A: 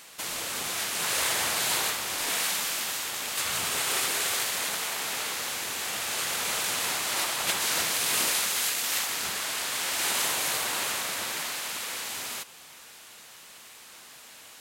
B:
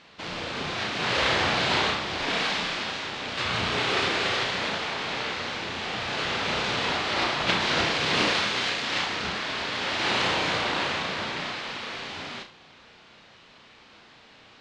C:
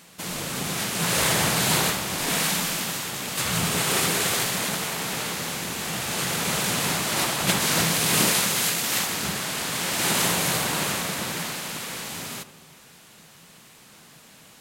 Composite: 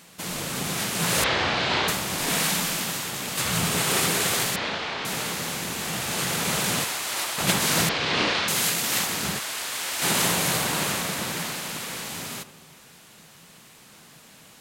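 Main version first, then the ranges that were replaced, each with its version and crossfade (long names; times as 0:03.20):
C
0:01.24–0:01.88: punch in from B
0:04.56–0:05.05: punch in from B
0:06.84–0:07.38: punch in from A
0:07.89–0:08.48: punch in from B
0:09.39–0:10.02: punch in from A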